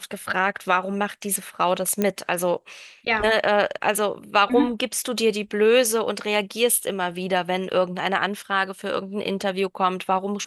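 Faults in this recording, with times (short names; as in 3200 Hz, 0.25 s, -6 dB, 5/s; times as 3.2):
2.02 pop -9 dBFS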